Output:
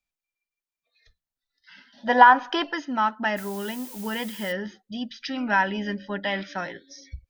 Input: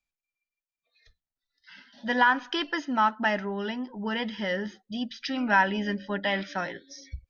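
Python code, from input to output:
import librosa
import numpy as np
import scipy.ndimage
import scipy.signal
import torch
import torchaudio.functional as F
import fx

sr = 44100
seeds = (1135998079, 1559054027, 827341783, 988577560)

y = fx.peak_eq(x, sr, hz=750.0, db=12.5, octaves=1.5, at=(2.07, 2.73))
y = fx.dmg_noise_colour(y, sr, seeds[0], colour='blue', level_db=-43.0, at=(3.36, 4.51), fade=0.02)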